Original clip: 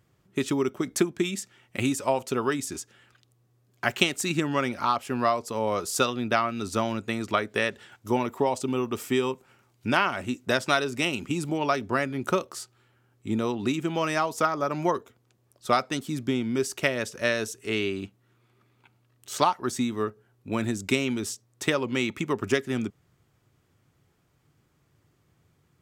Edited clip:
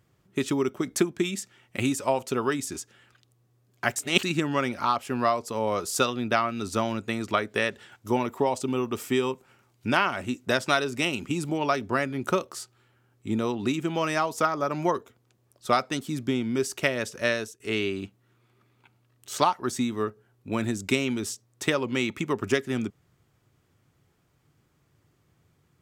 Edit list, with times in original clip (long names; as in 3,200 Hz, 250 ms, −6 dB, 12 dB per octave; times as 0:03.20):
0:03.96–0:04.23: reverse
0:17.33–0:17.60: fade out, to −21 dB